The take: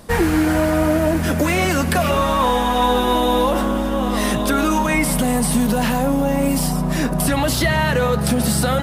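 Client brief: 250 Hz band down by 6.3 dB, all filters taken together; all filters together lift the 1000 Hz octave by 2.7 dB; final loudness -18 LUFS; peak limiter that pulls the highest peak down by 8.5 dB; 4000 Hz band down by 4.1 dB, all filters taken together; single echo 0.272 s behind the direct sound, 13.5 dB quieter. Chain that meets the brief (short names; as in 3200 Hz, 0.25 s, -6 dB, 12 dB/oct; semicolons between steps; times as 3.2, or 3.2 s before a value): bell 250 Hz -8.5 dB; bell 1000 Hz +4 dB; bell 4000 Hz -5.5 dB; limiter -14 dBFS; echo 0.272 s -13.5 dB; gain +4.5 dB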